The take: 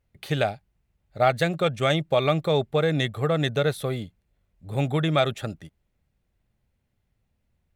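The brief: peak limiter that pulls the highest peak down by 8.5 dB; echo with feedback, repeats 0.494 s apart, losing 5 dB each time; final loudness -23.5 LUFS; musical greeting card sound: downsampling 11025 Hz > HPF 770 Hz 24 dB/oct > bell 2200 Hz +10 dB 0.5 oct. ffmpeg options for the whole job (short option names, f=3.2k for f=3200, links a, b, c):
-af "alimiter=limit=-15dB:level=0:latency=1,aecho=1:1:494|988|1482|1976|2470|2964|3458:0.562|0.315|0.176|0.0988|0.0553|0.031|0.0173,aresample=11025,aresample=44100,highpass=f=770:w=0.5412,highpass=f=770:w=1.3066,equalizer=f=2.2k:t=o:w=0.5:g=10,volume=6dB"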